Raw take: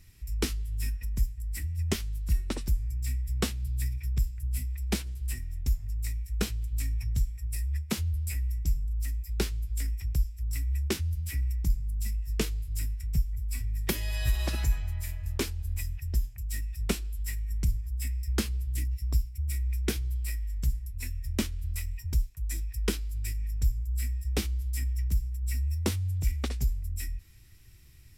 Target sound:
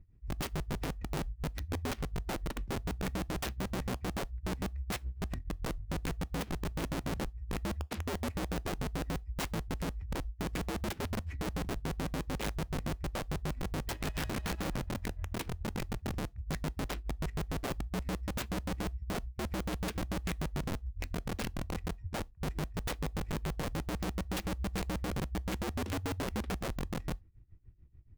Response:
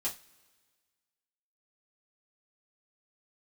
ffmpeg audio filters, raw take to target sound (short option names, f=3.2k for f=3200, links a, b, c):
-filter_complex "[0:a]adynamicsmooth=sensitivity=7.5:basefreq=620,tremolo=f=6.9:d=0.87,aeval=exprs='(mod(33.5*val(0)+1,2)-1)/33.5':c=same,asplit=2[a][b];[1:a]atrim=start_sample=2205,afade=t=out:st=0.14:d=0.01,atrim=end_sample=6615[c];[b][c]afir=irnorm=-1:irlink=0,volume=-23dB[d];[a][d]amix=inputs=2:normalize=0"